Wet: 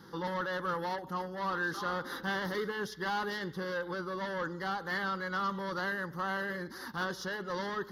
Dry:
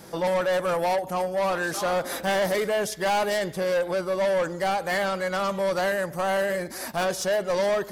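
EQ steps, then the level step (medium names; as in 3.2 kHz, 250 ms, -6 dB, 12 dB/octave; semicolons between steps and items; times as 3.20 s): high-pass 840 Hz 6 dB/octave; tilt EQ -3.5 dB/octave; static phaser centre 2.4 kHz, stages 6; 0.0 dB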